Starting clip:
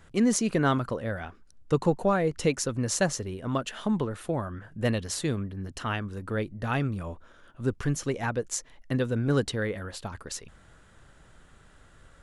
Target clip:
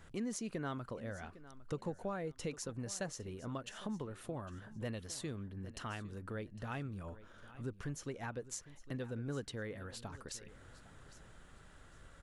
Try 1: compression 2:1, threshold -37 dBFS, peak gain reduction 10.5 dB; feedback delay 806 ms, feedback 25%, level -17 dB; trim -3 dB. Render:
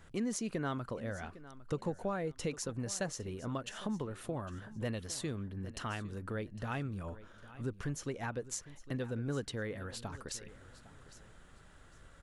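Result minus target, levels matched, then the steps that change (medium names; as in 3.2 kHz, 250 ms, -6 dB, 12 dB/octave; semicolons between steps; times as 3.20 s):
compression: peak gain reduction -4 dB
change: compression 2:1, threshold -45 dBFS, peak gain reduction 14.5 dB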